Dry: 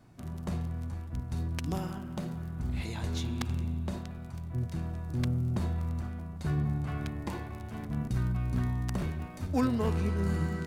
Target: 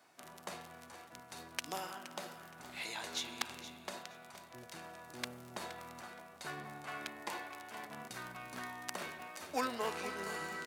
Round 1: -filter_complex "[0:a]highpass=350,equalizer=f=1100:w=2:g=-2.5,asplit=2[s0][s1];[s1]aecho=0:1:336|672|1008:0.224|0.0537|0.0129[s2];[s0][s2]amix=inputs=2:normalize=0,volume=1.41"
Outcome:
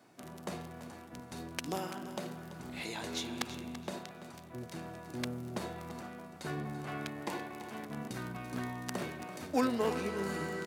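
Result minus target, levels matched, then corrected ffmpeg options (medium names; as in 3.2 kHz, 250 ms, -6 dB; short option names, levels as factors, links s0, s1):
250 Hz band +7.5 dB; echo 134 ms early
-filter_complex "[0:a]highpass=740,equalizer=f=1100:w=2:g=-2.5,asplit=2[s0][s1];[s1]aecho=0:1:470|940|1410:0.224|0.0537|0.0129[s2];[s0][s2]amix=inputs=2:normalize=0,volume=1.41"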